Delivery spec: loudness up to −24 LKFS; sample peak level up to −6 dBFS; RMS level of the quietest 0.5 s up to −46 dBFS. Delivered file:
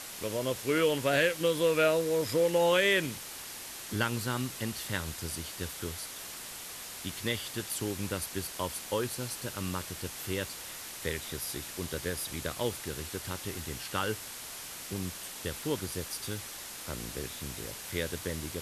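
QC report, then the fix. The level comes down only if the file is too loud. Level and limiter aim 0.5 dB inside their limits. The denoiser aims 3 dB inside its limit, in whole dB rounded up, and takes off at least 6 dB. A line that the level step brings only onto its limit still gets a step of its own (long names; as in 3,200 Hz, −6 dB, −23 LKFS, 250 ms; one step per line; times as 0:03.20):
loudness −33.0 LKFS: in spec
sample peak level −15.5 dBFS: in spec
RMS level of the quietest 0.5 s −43 dBFS: out of spec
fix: broadband denoise 6 dB, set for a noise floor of −43 dBFS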